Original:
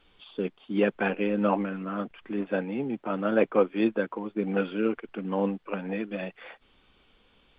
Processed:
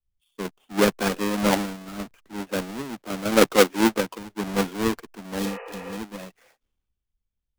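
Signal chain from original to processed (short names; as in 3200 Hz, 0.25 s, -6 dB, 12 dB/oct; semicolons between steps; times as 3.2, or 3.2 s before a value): half-waves squared off; spectral repair 5.42–5.9, 420–3000 Hz after; three-band expander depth 100%; gain -2.5 dB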